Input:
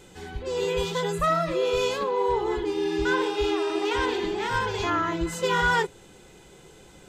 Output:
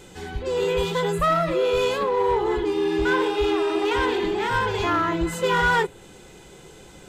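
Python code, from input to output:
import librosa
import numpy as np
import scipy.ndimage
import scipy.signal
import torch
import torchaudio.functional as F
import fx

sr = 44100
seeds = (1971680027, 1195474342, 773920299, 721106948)

p1 = fx.dynamic_eq(x, sr, hz=5700.0, q=1.4, threshold_db=-51.0, ratio=4.0, max_db=-7)
p2 = np.clip(p1, -10.0 ** (-25.0 / 20.0), 10.0 ** (-25.0 / 20.0))
y = p1 + (p2 * 10.0 ** (-3.5 / 20.0))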